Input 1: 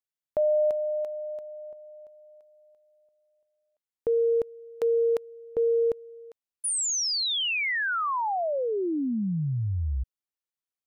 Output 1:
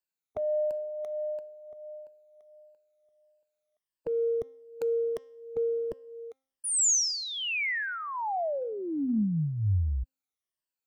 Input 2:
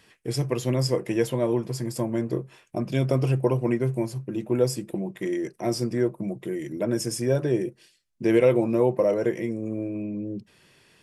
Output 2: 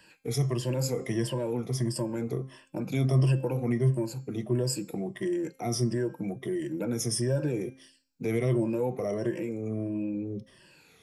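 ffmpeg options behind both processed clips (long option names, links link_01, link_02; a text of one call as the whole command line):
ffmpeg -i in.wav -filter_complex "[0:a]afftfilt=real='re*pow(10,14/40*sin(2*PI*(1.3*log(max(b,1)*sr/1024/100)/log(2)-(-1.5)*(pts-256)/sr)))':imag='im*pow(10,14/40*sin(2*PI*(1.3*log(max(b,1)*sr/1024/100)/log(2)-(-1.5)*(pts-256)/sr)))':win_size=1024:overlap=0.75,bandreject=frequency=264.9:width_type=h:width=4,bandreject=frequency=529.8:width_type=h:width=4,bandreject=frequency=794.7:width_type=h:width=4,bandreject=frequency=1059.6:width_type=h:width=4,bandreject=frequency=1324.5:width_type=h:width=4,bandreject=frequency=1589.4:width_type=h:width=4,bandreject=frequency=1854.3:width_type=h:width=4,bandreject=frequency=2119.2:width_type=h:width=4,bandreject=frequency=2384.1:width_type=h:width=4,bandreject=frequency=2649:width_type=h:width=4,bandreject=frequency=2913.9:width_type=h:width=4,bandreject=frequency=3178.8:width_type=h:width=4,bandreject=frequency=3443.7:width_type=h:width=4,bandreject=frequency=3708.6:width_type=h:width=4,bandreject=frequency=3973.5:width_type=h:width=4,bandreject=frequency=4238.4:width_type=h:width=4,bandreject=frequency=4503.3:width_type=h:width=4,bandreject=frequency=4768.2:width_type=h:width=4,bandreject=frequency=5033.1:width_type=h:width=4,bandreject=frequency=5298:width_type=h:width=4,bandreject=frequency=5562.9:width_type=h:width=4,bandreject=frequency=5827.8:width_type=h:width=4,bandreject=frequency=6092.7:width_type=h:width=4,bandreject=frequency=6357.6:width_type=h:width=4,bandreject=frequency=6622.5:width_type=h:width=4,bandreject=frequency=6887.4:width_type=h:width=4,bandreject=frequency=7152.3:width_type=h:width=4,bandreject=frequency=7417.2:width_type=h:width=4,bandreject=frequency=7682.1:width_type=h:width=4,bandreject=frequency=7947:width_type=h:width=4,acrossover=split=220|5900[link_01][link_02][link_03];[link_02]acompressor=threshold=-29dB:ratio=2.5:attack=0.68:release=78:knee=2.83:detection=peak[link_04];[link_01][link_04][link_03]amix=inputs=3:normalize=0,volume=-2dB" out.wav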